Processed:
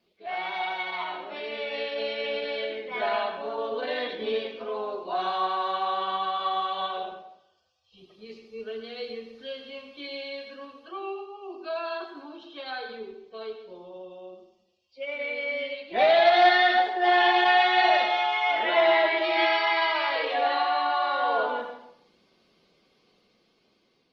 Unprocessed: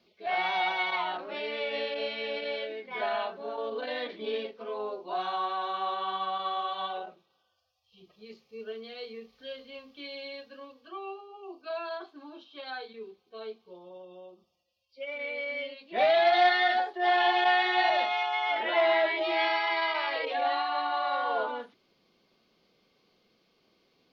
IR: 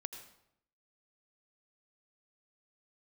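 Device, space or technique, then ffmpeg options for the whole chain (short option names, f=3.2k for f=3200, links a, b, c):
speakerphone in a meeting room: -filter_complex "[1:a]atrim=start_sample=2205[a];[0:a][a]afir=irnorm=-1:irlink=0,dynaudnorm=f=750:g=5:m=6.5dB" -ar 48000 -c:a libopus -b:a 24k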